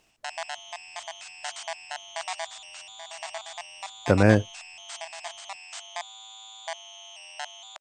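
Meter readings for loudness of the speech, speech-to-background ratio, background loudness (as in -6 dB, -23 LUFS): -21.5 LUFS, 16.5 dB, -38.0 LUFS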